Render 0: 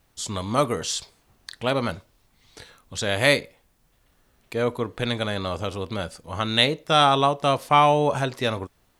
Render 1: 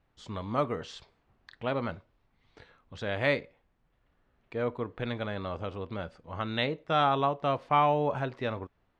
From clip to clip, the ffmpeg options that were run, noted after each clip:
ffmpeg -i in.wav -af "lowpass=2400,volume=-7dB" out.wav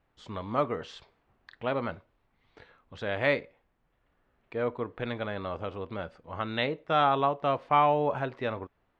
ffmpeg -i in.wav -af "bass=frequency=250:gain=-4,treble=frequency=4000:gain=-7,volume=1.5dB" out.wav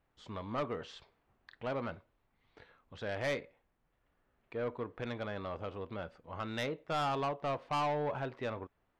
ffmpeg -i in.wav -af "asoftclip=type=tanh:threshold=-24dB,volume=-4.5dB" out.wav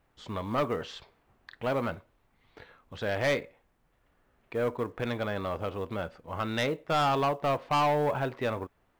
ffmpeg -i in.wav -af "acrusher=bits=8:mode=log:mix=0:aa=0.000001,volume=7.5dB" out.wav

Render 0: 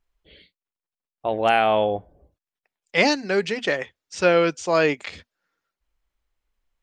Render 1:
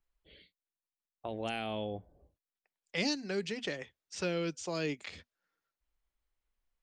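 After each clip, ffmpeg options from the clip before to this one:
ffmpeg -i in.wav -filter_complex "[0:a]acrossover=split=340|3000[link_01][link_02][link_03];[link_02]acompressor=threshold=-32dB:ratio=6[link_04];[link_01][link_04][link_03]amix=inputs=3:normalize=0,volume=-8dB" out.wav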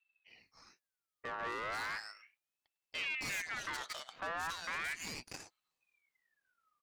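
ffmpeg -i in.wav -filter_complex "[0:a]acrossover=split=2000[link_01][link_02];[link_02]adelay=270[link_03];[link_01][link_03]amix=inputs=2:normalize=0,aeval=exprs='(tanh(158*val(0)+0.75)-tanh(0.75))/158':channel_layout=same,aeval=exprs='val(0)*sin(2*PI*1900*n/s+1900*0.4/0.36*sin(2*PI*0.36*n/s))':channel_layout=same,volume=8.5dB" out.wav

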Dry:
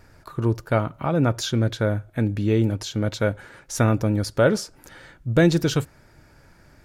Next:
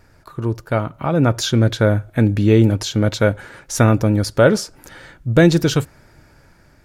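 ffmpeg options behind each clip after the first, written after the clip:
ffmpeg -i in.wav -af "dynaudnorm=framelen=470:gausssize=5:maxgain=11.5dB" out.wav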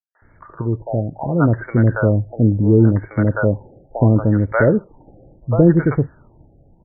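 ffmpeg -i in.wav -filter_complex "[0:a]acrossover=split=630|5700[link_01][link_02][link_03];[link_02]adelay=150[link_04];[link_01]adelay=220[link_05];[link_05][link_04][link_03]amix=inputs=3:normalize=0,afftfilt=real='re*lt(b*sr/1024,810*pow(2300/810,0.5+0.5*sin(2*PI*0.72*pts/sr)))':imag='im*lt(b*sr/1024,810*pow(2300/810,0.5+0.5*sin(2*PI*0.72*pts/sr)))':win_size=1024:overlap=0.75,volume=1dB" out.wav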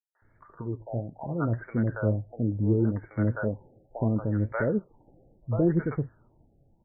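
ffmpeg -i in.wav -af "flanger=delay=4.1:depth=5.4:regen=63:speed=1.7:shape=sinusoidal,volume=-8dB" out.wav

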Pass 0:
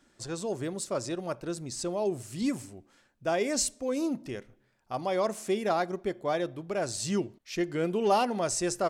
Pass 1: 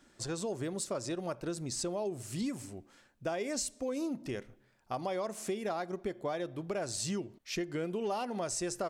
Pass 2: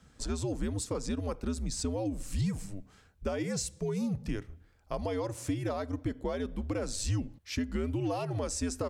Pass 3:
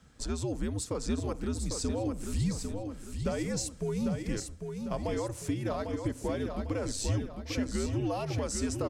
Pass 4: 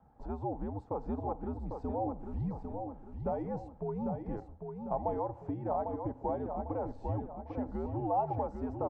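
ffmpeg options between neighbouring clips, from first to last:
ffmpeg -i in.wav -af "acompressor=threshold=-34dB:ratio=6,volume=1.5dB" out.wav
ffmpeg -i in.wav -af "lowshelf=frequency=210:gain=11,afreqshift=-94" out.wav
ffmpeg -i in.wav -af "aecho=1:1:799|1598|2397|3196|3995:0.501|0.2|0.0802|0.0321|0.0128" out.wav
ffmpeg -i in.wav -af "lowpass=frequency=830:width_type=q:width=9.1,volume=-6dB" out.wav

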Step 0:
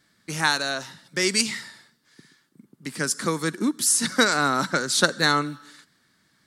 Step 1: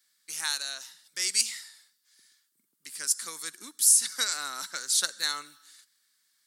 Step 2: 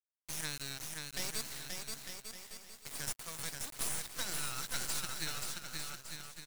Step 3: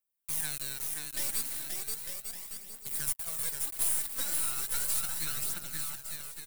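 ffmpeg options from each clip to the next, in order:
ffmpeg -i in.wav -af "aderivative" out.wav
ffmpeg -i in.wav -filter_complex "[0:a]acompressor=threshold=-32dB:ratio=10,acrusher=bits=4:dc=4:mix=0:aa=0.000001,asplit=2[link_01][link_02];[link_02]aecho=0:1:530|901|1161|1342|1470:0.631|0.398|0.251|0.158|0.1[link_03];[link_01][link_03]amix=inputs=2:normalize=0" out.wav
ffmpeg -i in.wav -af "aexciter=amount=3.6:drive=4.2:freq=8200,aphaser=in_gain=1:out_gain=1:delay=3.8:decay=0.41:speed=0.36:type=triangular,asoftclip=type=tanh:threshold=-21dB" out.wav

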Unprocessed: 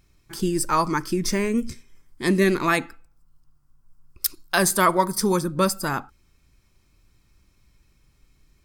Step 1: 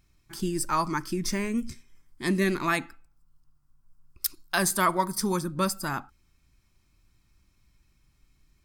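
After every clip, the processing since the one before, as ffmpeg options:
ffmpeg -i in.wav -af "equalizer=frequency=470:width_type=o:width=0.48:gain=-7.5,volume=-4.5dB" out.wav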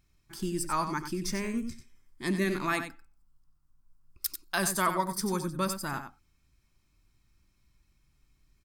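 ffmpeg -i in.wav -af "aecho=1:1:92:0.355,volume=-4dB" out.wav

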